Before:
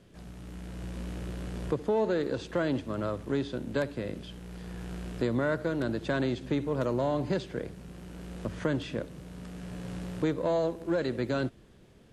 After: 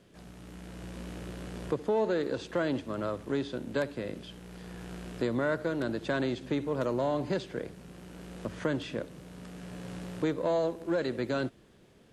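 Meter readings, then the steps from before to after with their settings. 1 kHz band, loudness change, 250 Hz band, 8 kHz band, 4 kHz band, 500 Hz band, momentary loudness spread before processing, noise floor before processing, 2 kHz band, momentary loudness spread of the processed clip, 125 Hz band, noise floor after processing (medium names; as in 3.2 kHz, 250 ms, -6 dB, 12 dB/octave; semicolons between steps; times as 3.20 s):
0.0 dB, -1.0 dB, -1.5 dB, 0.0 dB, 0.0 dB, -0.5 dB, 15 LU, -56 dBFS, 0.0 dB, 17 LU, -4.0 dB, -59 dBFS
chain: bass shelf 120 Hz -9 dB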